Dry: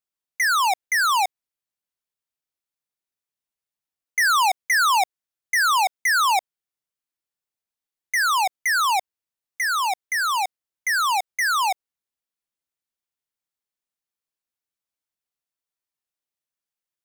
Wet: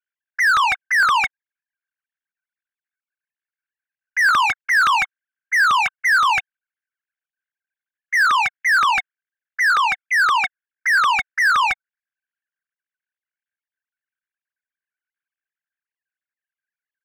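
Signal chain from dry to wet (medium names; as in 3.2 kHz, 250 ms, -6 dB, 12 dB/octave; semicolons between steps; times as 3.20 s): formants replaced by sine waves; ladder high-pass 1.5 kHz, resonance 80%; overdrive pedal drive 33 dB, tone 2.3 kHz, clips at -11 dBFS; trim +3 dB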